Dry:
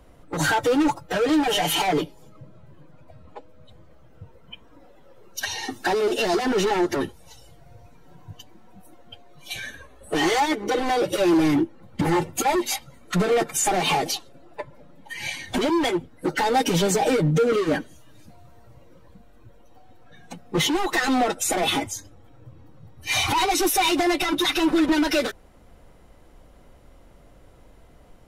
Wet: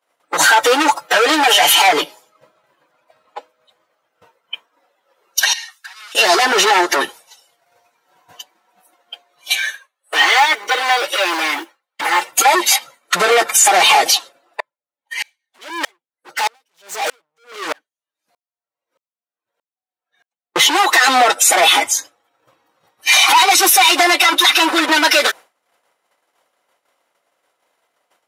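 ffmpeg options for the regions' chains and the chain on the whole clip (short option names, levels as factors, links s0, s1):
-filter_complex "[0:a]asettb=1/sr,asplit=3[s0][s1][s2];[s0]atrim=end=5.534[s3];[s1]atrim=start=5.53:end=6.15,asetpts=PTS-STARTPTS,afade=t=in:d=0.004:c=qsin,afade=t=out:st=0.616:d=0.004:c=qsin,highpass=f=1200:w=0.5412,highpass=f=1200:w=1.3066,acompressor=threshold=0.0112:ratio=20:attack=3.2:release=140:knee=1:detection=peak[s4];[s2]atrim=start=6.146[s5];[s3][s4]acrossfade=d=0.004:c1=hsin:c2=qsin[s6];[s6][s5]acrossfade=d=0.004:c1=qsin:c2=hsin,asettb=1/sr,asplit=3[s7][s8][s9];[s7]atrim=end=9.554[s10];[s8]atrim=start=9.55:end=12.32,asetpts=PTS-STARTPTS,afade=t=in:d=0.004:c=qsin,afade=t=out:st=2.766:d=0.004:c=qsin,acrossover=split=3800[s11][s12];[s12]acompressor=threshold=0.00562:ratio=4:attack=1:release=60[s13];[s11][s13]amix=inputs=2:normalize=0,highpass=f=1200:p=1,acrusher=bits=8:mode=log:mix=0:aa=0.000001[s14];[s9]atrim=start=12.316[s15];[s10][s14]acrossfade=d=0.004:c1=hsin:c2=qsin[s16];[s16][s15]acrossfade=d=0.004:c1=qsin:c2=hsin,asettb=1/sr,asplit=3[s17][s18][s19];[s17]atrim=end=14.604[s20];[s18]atrim=start=14.6:end=20.56,asetpts=PTS-STARTPTS,afade=t=in:d=0.004:c=qsin,afade=t=out:st=5.956:d=0.004:c=qsin,asoftclip=type=hard:threshold=0.0447,aeval=exprs='val(0)*pow(10,-36*if(lt(mod(-1.6*n/s,1),2*abs(-1.6)/1000),1-mod(-1.6*n/s,1)/(2*abs(-1.6)/1000),(mod(-1.6*n/s,1)-2*abs(-1.6)/1000)/(1-2*abs(-1.6)/1000))/20)':c=same[s21];[s19]atrim=start=20.556[s22];[s20][s21]acrossfade=d=0.004:c1=hsin:c2=qsin[s23];[s23][s22]acrossfade=d=0.004:c1=qsin:c2=hsin,agate=range=0.0224:threshold=0.0158:ratio=3:detection=peak,highpass=850,alimiter=level_in=7.5:limit=0.891:release=50:level=0:latency=1,volume=0.891"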